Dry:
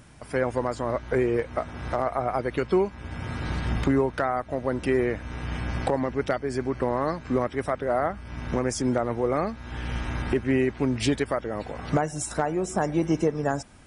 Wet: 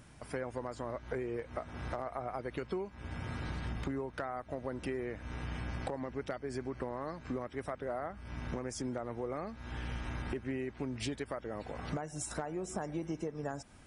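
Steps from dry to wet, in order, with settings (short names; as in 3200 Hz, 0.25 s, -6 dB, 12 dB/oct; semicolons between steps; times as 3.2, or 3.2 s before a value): compressor 4:1, threshold -30 dBFS, peak gain reduction 10.5 dB; gain -5.5 dB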